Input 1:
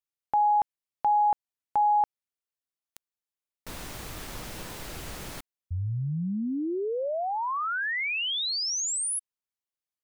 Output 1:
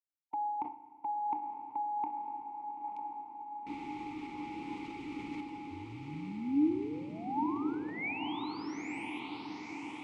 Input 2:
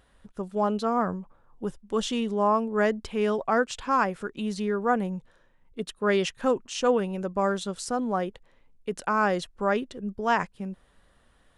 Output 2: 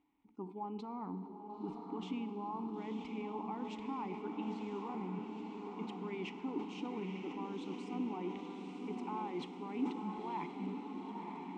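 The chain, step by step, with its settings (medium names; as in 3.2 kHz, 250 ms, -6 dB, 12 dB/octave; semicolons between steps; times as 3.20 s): spectral noise reduction 13 dB; dynamic bell 8 kHz, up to +6 dB, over -52 dBFS, Q 2.4; peak limiter -21.5 dBFS; reverse; compression, threshold -38 dBFS; reverse; vowel filter u; distance through air 64 m; on a send: echo that smears into a reverb 956 ms, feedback 67%, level -4.5 dB; on the sum: FDN reverb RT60 2.6 s, low-frequency decay 1.25×, high-frequency decay 0.9×, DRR 11 dB; decay stretcher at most 120 dB/s; trim +12.5 dB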